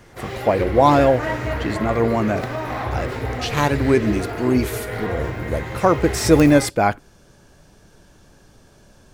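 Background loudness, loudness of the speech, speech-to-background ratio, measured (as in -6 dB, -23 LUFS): -27.0 LUFS, -19.5 LUFS, 7.5 dB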